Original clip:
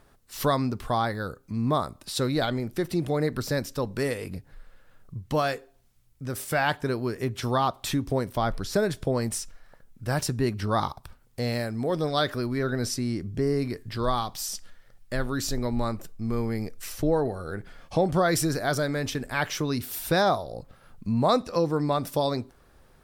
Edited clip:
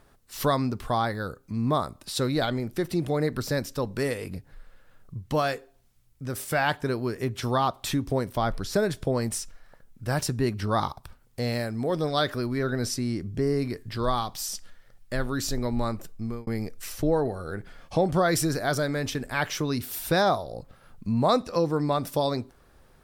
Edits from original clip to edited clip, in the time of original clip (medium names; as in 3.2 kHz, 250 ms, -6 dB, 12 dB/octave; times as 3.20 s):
16.21–16.47 s: fade out